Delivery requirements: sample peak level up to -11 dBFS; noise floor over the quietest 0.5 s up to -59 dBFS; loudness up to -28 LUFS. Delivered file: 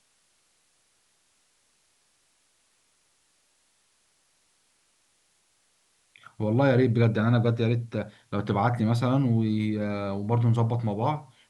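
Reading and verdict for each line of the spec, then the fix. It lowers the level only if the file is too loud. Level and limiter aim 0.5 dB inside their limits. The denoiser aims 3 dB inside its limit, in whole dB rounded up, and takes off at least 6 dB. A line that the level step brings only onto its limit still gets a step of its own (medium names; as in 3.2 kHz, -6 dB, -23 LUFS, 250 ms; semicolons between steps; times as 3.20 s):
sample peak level -9.0 dBFS: fail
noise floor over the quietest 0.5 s -68 dBFS: pass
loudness -25.5 LUFS: fail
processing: trim -3 dB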